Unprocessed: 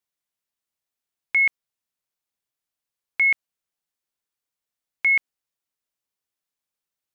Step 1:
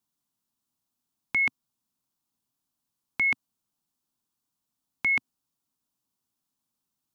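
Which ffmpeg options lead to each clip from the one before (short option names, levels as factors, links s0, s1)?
-af "equalizer=f=125:t=o:w=1:g=5,equalizer=f=250:t=o:w=1:g=11,equalizer=f=500:t=o:w=1:g=-8,equalizer=f=1000:t=o:w=1:g=5,equalizer=f=2000:t=o:w=1:g=-11,volume=1.58"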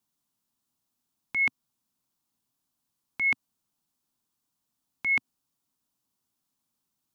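-af "alimiter=limit=0.0841:level=0:latency=1:release=109,volume=1.26"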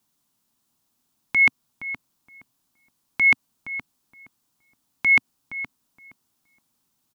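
-filter_complex "[0:a]asplit=2[s0][s1];[s1]adelay=469,lowpass=f=1700:p=1,volume=0.299,asplit=2[s2][s3];[s3]adelay=469,lowpass=f=1700:p=1,volume=0.21,asplit=2[s4][s5];[s5]adelay=469,lowpass=f=1700:p=1,volume=0.21[s6];[s0][s2][s4][s6]amix=inputs=4:normalize=0,volume=2.66"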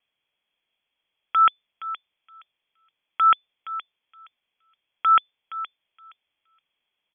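-af "lowpass=f=3000:t=q:w=0.5098,lowpass=f=3000:t=q:w=0.6013,lowpass=f=3000:t=q:w=0.9,lowpass=f=3000:t=q:w=2.563,afreqshift=-3500"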